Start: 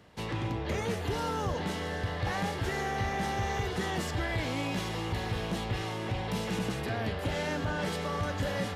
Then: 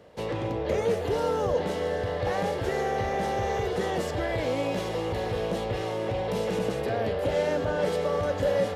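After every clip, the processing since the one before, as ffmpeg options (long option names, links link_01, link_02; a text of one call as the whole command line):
ffmpeg -i in.wav -af "equalizer=frequency=520:width_type=o:width=0.87:gain=14,volume=-1dB" out.wav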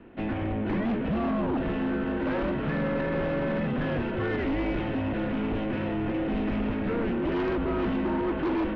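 ffmpeg -i in.wav -af "highpass=frequency=170:width_type=q:width=0.5412,highpass=frequency=170:width_type=q:width=1.307,lowpass=frequency=3100:width_type=q:width=0.5176,lowpass=frequency=3100:width_type=q:width=0.7071,lowpass=frequency=3100:width_type=q:width=1.932,afreqshift=-230,aeval=exprs='0.178*(cos(1*acos(clip(val(0)/0.178,-1,1)))-cos(1*PI/2))+0.0708*(cos(5*acos(clip(val(0)/0.178,-1,1)))-cos(5*PI/2))':channel_layout=same,volume=-6dB" out.wav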